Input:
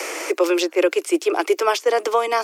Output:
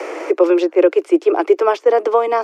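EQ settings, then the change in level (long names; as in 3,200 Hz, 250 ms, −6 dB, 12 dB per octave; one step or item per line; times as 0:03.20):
resonant band-pass 390 Hz, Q 0.55
+6.0 dB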